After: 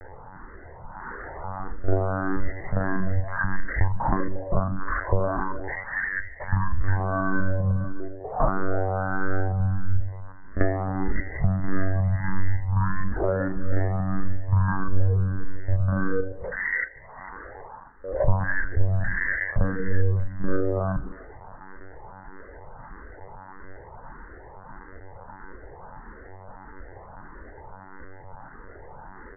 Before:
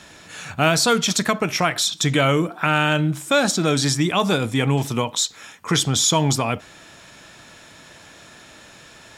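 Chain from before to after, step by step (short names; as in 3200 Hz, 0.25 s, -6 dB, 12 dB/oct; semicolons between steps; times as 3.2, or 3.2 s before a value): granular stretch 1.6×, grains 39 ms; comb 1 ms, depth 41%; monotone LPC vocoder at 8 kHz 190 Hz; compressor 12:1, threshold -22 dBFS, peak gain reduction 11.5 dB; speed mistake 15 ips tape played at 7.5 ips; LPF 2900 Hz; low shelf 73 Hz +7.5 dB; delay with a stepping band-pass 0.15 s, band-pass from 240 Hz, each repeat 1.4 oct, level -10 dB; endless phaser +1.6 Hz; gain +5.5 dB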